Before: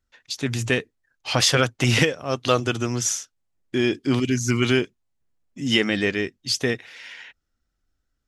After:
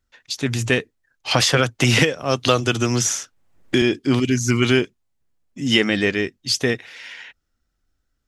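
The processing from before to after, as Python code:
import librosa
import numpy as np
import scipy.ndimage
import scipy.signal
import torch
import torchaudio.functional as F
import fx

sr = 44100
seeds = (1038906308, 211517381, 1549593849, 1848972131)

y = fx.band_squash(x, sr, depth_pct=70, at=(1.31, 3.82))
y = F.gain(torch.from_numpy(y), 3.0).numpy()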